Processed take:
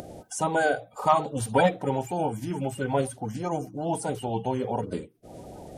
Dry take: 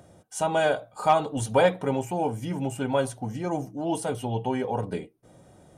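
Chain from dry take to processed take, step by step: bin magnitudes rounded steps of 30 dB; upward compressor, threshold -31 dBFS

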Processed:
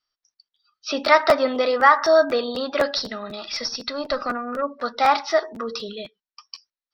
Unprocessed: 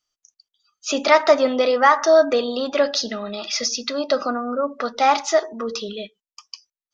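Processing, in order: 2.97–4.62 tube stage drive 12 dB, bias 0.5; rippled Chebyshev low-pass 5700 Hz, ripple 6 dB; crackling interface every 0.25 s, samples 512, repeat, from 0.54; gain +2.5 dB

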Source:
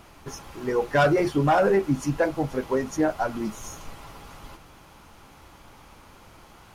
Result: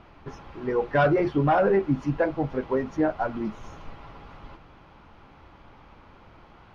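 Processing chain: air absorption 280 m

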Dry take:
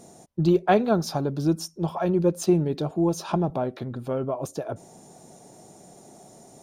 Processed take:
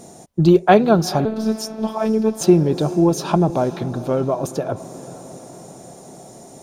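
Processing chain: diffused feedback echo 0.457 s, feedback 59%, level -16 dB; 1.25–2.41 robotiser 219 Hz; gain +7.5 dB

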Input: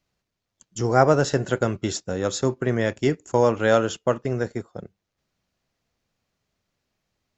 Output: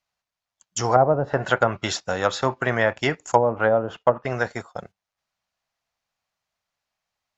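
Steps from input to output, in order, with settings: resonant low shelf 540 Hz -11 dB, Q 1.5; treble ducked by the level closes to 460 Hz, closed at -19 dBFS; gate -51 dBFS, range -12 dB; gain +8.5 dB

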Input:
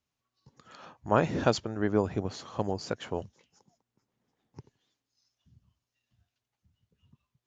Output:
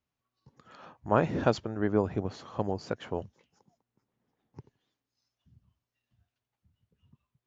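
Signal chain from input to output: high shelf 4300 Hz -11.5 dB

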